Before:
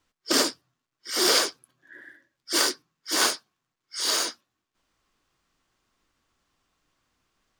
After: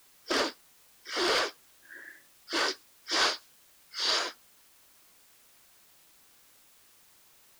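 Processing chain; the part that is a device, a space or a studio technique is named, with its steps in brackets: tape answering machine (band-pass 380–3400 Hz; saturation -19.5 dBFS, distortion -16 dB; wow and flutter; white noise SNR 24 dB); 2.68–4.19 s: dynamic bell 4.8 kHz, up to +6 dB, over -47 dBFS, Q 1.1

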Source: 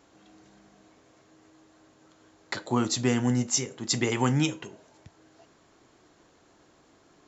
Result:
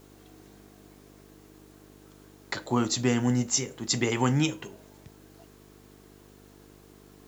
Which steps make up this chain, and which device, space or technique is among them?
video cassette with head-switching buzz (mains buzz 50 Hz, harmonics 9, -55 dBFS -1 dB/octave; white noise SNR 32 dB)

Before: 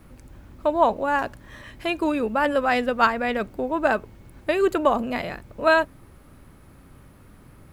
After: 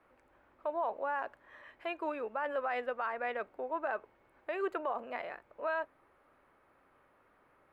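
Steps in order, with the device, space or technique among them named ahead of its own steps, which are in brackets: DJ mixer with the lows and highs turned down (three-band isolator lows -24 dB, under 420 Hz, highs -20 dB, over 2.5 kHz; peak limiter -17.5 dBFS, peak gain reduction 11.5 dB); trim -8 dB

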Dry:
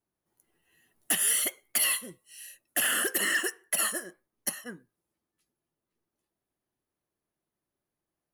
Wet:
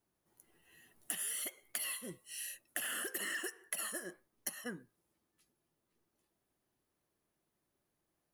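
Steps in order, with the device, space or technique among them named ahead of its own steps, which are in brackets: serial compression, peaks first (compression 5:1, threshold -35 dBFS, peak gain reduction 11.5 dB; compression 2.5:1, threshold -43 dBFS, peak gain reduction 8 dB); trim +3.5 dB

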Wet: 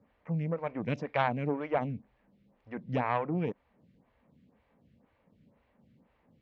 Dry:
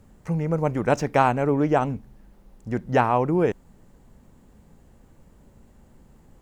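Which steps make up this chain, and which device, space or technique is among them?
vibe pedal into a guitar amplifier (lamp-driven phase shifter 2 Hz; valve stage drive 13 dB, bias 0.65; cabinet simulation 100–3900 Hz, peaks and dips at 370 Hz -9 dB, 820 Hz -4 dB, 1.4 kHz -4 dB, 2.3 kHz +5 dB); trim -1.5 dB

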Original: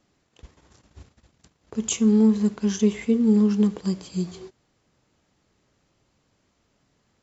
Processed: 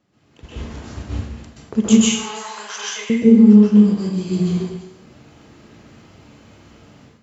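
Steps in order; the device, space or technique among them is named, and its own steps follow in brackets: 1.89–3.10 s: high-pass 830 Hz 24 dB/octave; tone controls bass +8 dB, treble -6 dB; repeats whose band climbs or falls 113 ms, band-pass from 890 Hz, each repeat 1.4 oct, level -10.5 dB; Schroeder reverb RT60 0.4 s, combs from 31 ms, DRR 10 dB; far laptop microphone (reverberation RT60 0.70 s, pre-delay 120 ms, DRR -7.5 dB; high-pass 180 Hz 6 dB/octave; level rider gain up to 13.5 dB); trim -1 dB

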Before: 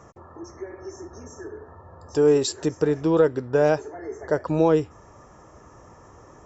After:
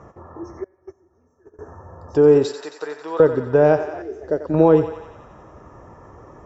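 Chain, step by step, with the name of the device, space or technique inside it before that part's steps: through cloth (low-pass 6.6 kHz 12 dB/octave; treble shelf 2.8 kHz -14.5 dB); 2.50–3.20 s: high-pass 960 Hz 12 dB/octave; thinning echo 90 ms, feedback 74%, high-pass 620 Hz, level -9 dB; 0.64–1.59 s: gate -33 dBFS, range -25 dB; 4.02–4.54 s: graphic EQ 125/1000/2000 Hz -11/-12/-7 dB; trim +5.5 dB

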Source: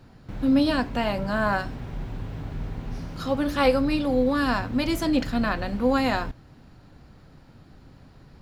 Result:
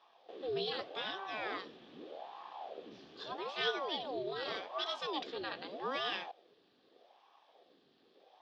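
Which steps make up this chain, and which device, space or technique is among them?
voice changer toy (ring modulator with a swept carrier 540 Hz, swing 80%, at 0.82 Hz; cabinet simulation 510–4900 Hz, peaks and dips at 610 Hz -5 dB, 950 Hz -10 dB, 1.4 kHz -9 dB, 2.1 kHz -8 dB, 3.4 kHz +8 dB); trim -6 dB

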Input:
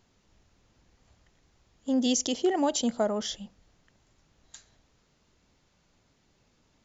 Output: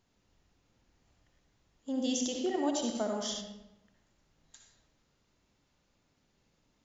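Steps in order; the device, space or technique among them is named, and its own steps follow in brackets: bathroom (reverberation RT60 0.90 s, pre-delay 56 ms, DRR 1.5 dB); 2.95–3.41 s: treble shelf 4.1 kHz +8 dB; trim -8 dB

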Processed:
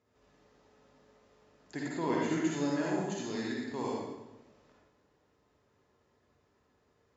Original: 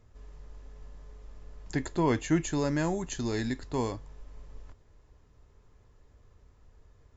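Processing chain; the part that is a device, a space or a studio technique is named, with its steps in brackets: supermarket ceiling speaker (band-pass 210–6600 Hz; reverberation RT60 1.0 s, pre-delay 45 ms, DRR -4.5 dB); trim -8 dB

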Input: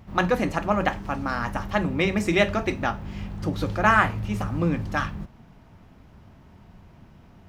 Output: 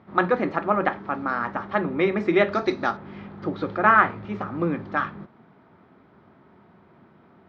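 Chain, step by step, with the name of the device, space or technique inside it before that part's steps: kitchen radio (cabinet simulation 200–3500 Hz, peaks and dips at 380 Hz +6 dB, 1.3 kHz +5 dB, 2.8 kHz -9 dB); 2.52–2.97 s: high-order bell 5.5 kHz +15 dB 1.2 oct

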